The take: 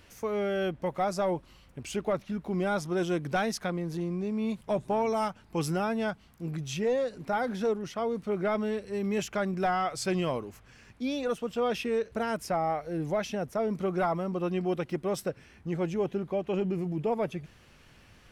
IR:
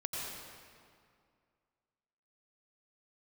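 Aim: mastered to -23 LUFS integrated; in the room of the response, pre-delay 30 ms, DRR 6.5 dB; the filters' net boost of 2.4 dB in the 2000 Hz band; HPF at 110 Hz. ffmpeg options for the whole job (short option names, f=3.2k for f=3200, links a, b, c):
-filter_complex "[0:a]highpass=110,equalizer=f=2k:t=o:g=3.5,asplit=2[a][b];[1:a]atrim=start_sample=2205,adelay=30[c];[b][c]afir=irnorm=-1:irlink=0,volume=-9.5dB[d];[a][d]amix=inputs=2:normalize=0,volume=7dB"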